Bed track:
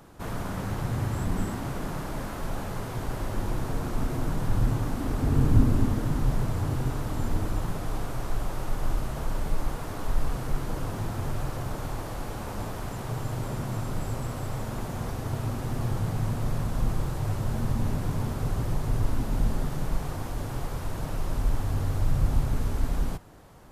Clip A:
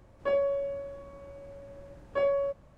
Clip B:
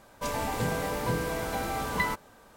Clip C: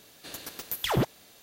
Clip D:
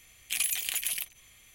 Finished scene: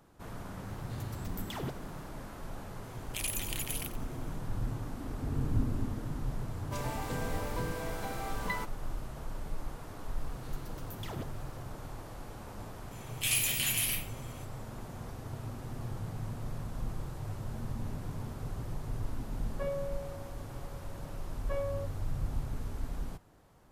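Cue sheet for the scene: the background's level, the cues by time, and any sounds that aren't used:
bed track -10.5 dB
0.66 s: add C -13.5 dB
2.84 s: add D -7 dB + bit-crushed delay 90 ms, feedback 35%, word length 7-bit, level -12 dB
6.50 s: add B -7.5 dB
10.19 s: add C -16.5 dB
12.91 s: add D -5.5 dB + simulated room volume 60 m³, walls mixed, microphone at 1.5 m
19.34 s: add A -9.5 dB

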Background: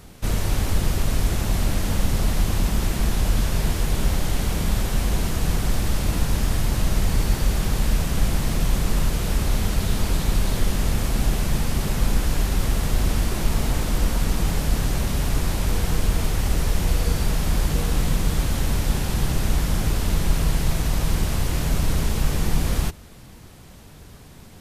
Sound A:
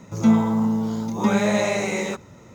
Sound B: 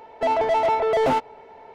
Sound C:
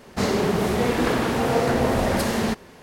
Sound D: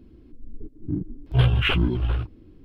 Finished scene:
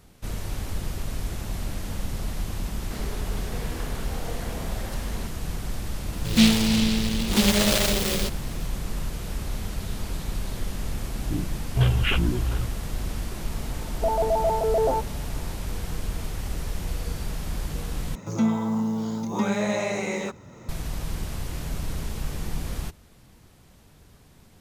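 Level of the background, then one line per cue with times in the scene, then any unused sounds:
background -9 dB
2.73 s: add C -15 dB + bass shelf 440 Hz -5.5 dB
6.13 s: add A -1 dB + delay time shaken by noise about 3.3 kHz, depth 0.27 ms
10.42 s: add D -2.5 dB
13.81 s: add B -1.5 dB + Butterworth band-pass 530 Hz, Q 1
18.15 s: replace with A -5 dB + three bands compressed up and down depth 40%

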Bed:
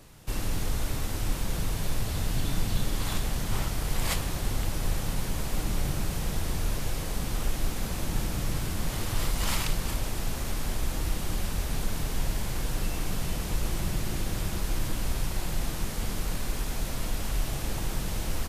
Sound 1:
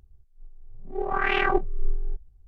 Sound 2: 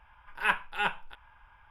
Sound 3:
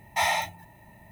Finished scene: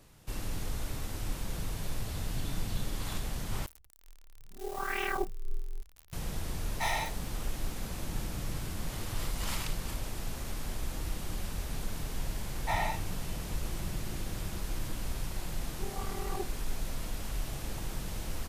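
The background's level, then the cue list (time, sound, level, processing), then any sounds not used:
bed -6.5 dB
3.66 s: replace with 1 -10 dB + zero-crossing glitches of -24 dBFS
6.64 s: add 3 -8 dB
12.51 s: add 3 -7 dB + RIAA curve playback
14.85 s: add 1 -14.5 dB + Savitzky-Golay filter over 65 samples
not used: 2

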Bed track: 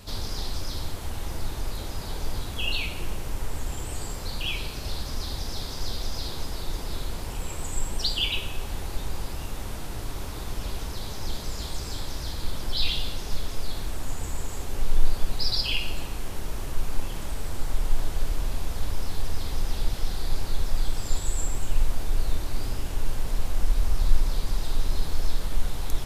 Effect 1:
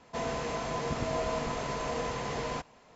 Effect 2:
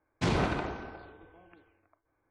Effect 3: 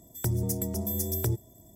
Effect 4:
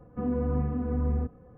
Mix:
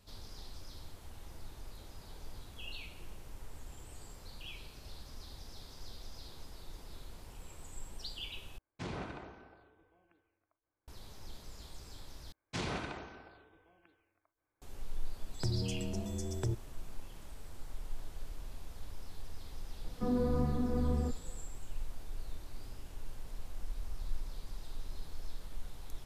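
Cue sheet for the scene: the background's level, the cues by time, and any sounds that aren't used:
bed track -17.5 dB
8.58 s: replace with 2 -13.5 dB
12.32 s: replace with 2 -11 dB + treble shelf 2.2 kHz +9 dB
15.19 s: add 3 -6 dB + low-pass 7.1 kHz 24 dB/octave
19.84 s: add 4 -1.5 dB + bass shelf 130 Hz -6.5 dB
not used: 1

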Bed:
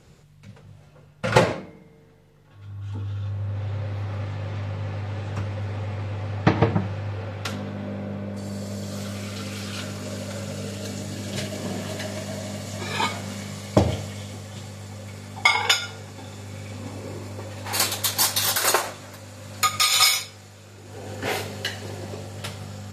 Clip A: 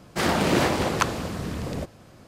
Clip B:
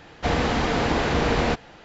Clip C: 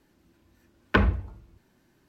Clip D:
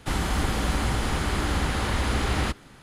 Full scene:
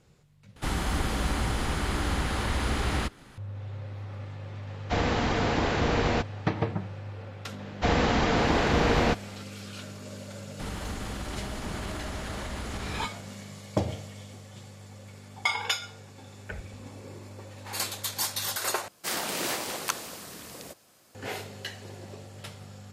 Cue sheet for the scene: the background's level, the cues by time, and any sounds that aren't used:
bed -9 dB
0.56 s: replace with D -3 dB + upward compressor, threshold -42 dBFS
4.67 s: add B -4 dB
7.59 s: add B -1.5 dB
10.53 s: add D -5.5 dB, fades 0.10 s + peak limiter -22 dBFS
15.55 s: add C -15.5 dB + stepped phaser 7.6 Hz 230–2000 Hz
18.88 s: replace with A -9.5 dB + RIAA curve recording

